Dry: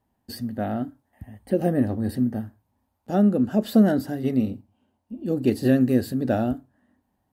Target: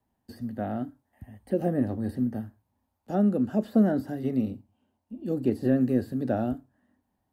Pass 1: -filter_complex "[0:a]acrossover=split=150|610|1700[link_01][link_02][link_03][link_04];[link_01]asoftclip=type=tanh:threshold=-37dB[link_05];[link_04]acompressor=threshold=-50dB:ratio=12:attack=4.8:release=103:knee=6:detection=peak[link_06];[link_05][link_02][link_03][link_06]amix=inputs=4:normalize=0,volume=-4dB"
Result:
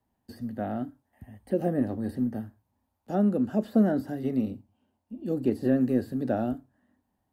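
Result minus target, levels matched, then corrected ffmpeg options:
soft clipping: distortion +10 dB
-filter_complex "[0:a]acrossover=split=150|610|1700[link_01][link_02][link_03][link_04];[link_01]asoftclip=type=tanh:threshold=-27dB[link_05];[link_04]acompressor=threshold=-50dB:ratio=12:attack=4.8:release=103:knee=6:detection=peak[link_06];[link_05][link_02][link_03][link_06]amix=inputs=4:normalize=0,volume=-4dB"

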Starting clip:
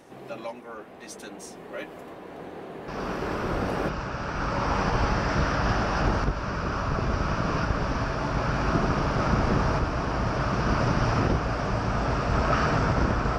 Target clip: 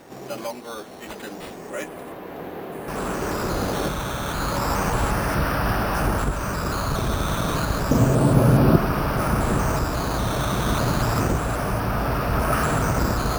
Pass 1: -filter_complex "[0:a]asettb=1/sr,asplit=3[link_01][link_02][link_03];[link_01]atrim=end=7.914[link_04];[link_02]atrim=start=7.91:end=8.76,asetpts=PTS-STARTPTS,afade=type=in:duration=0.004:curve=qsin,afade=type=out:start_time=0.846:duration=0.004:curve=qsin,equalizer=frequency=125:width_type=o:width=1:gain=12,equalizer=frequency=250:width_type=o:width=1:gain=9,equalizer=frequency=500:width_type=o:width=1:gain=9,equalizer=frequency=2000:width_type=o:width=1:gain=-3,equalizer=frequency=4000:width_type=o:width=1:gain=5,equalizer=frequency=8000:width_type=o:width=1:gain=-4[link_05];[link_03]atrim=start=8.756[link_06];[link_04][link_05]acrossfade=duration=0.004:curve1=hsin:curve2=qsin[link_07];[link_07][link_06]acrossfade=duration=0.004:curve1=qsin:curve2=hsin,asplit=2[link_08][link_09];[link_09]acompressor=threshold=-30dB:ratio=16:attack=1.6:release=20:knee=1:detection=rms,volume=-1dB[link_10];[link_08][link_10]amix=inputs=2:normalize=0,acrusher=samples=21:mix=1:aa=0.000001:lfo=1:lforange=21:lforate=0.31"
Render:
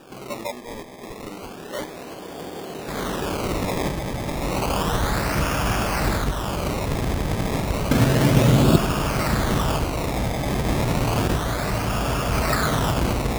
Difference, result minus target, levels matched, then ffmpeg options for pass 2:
sample-and-hold swept by an LFO: distortion +9 dB
-filter_complex "[0:a]asettb=1/sr,asplit=3[link_01][link_02][link_03];[link_01]atrim=end=7.914[link_04];[link_02]atrim=start=7.91:end=8.76,asetpts=PTS-STARTPTS,afade=type=in:duration=0.004:curve=qsin,afade=type=out:start_time=0.846:duration=0.004:curve=qsin,equalizer=frequency=125:width_type=o:width=1:gain=12,equalizer=frequency=250:width_type=o:width=1:gain=9,equalizer=frequency=500:width_type=o:width=1:gain=9,equalizer=frequency=2000:width_type=o:width=1:gain=-3,equalizer=frequency=4000:width_type=o:width=1:gain=5,equalizer=frequency=8000:width_type=o:width=1:gain=-4[link_05];[link_03]atrim=start=8.756[link_06];[link_04][link_05]acrossfade=duration=0.004:curve1=hsin:curve2=qsin[link_07];[link_07][link_06]acrossfade=duration=0.004:curve1=qsin:curve2=hsin,asplit=2[link_08][link_09];[link_09]acompressor=threshold=-30dB:ratio=16:attack=1.6:release=20:knee=1:detection=rms,volume=-1dB[link_10];[link_08][link_10]amix=inputs=2:normalize=0,acrusher=samples=6:mix=1:aa=0.000001:lfo=1:lforange=6:lforate=0.31"

